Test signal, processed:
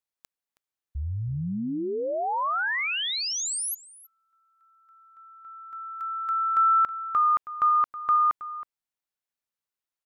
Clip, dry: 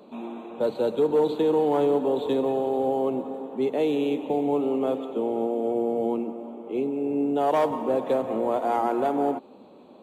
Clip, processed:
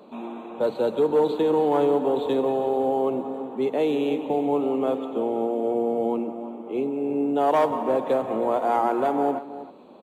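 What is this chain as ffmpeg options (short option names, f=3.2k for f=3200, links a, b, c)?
-filter_complex "[0:a]equalizer=f=1.2k:t=o:w=1.9:g=3.5,asplit=2[a][b];[b]adelay=320.7,volume=-14dB,highshelf=f=4k:g=-7.22[c];[a][c]amix=inputs=2:normalize=0"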